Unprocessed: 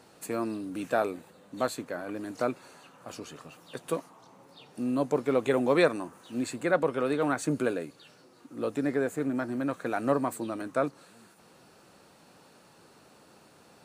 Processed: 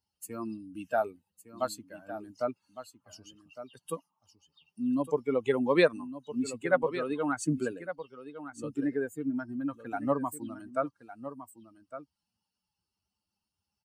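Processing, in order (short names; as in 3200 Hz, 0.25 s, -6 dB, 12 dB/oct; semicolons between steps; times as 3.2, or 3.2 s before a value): per-bin expansion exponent 2; on a send: echo 1.159 s -12.5 dB; on the sum: gain +2.5 dB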